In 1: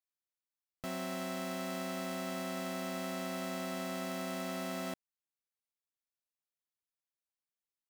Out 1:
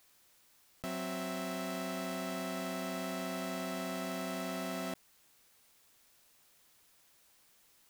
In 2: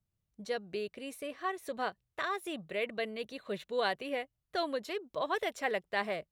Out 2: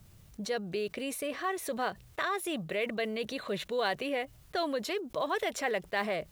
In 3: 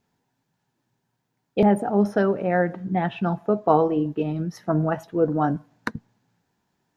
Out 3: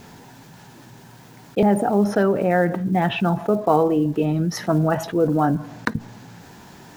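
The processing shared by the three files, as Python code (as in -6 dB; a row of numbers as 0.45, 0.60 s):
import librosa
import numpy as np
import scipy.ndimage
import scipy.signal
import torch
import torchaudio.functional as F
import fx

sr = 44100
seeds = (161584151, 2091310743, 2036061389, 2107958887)

y = fx.block_float(x, sr, bits=7)
y = fx.env_flatten(y, sr, amount_pct=50)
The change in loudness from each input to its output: +0.5, +2.5, +2.5 LU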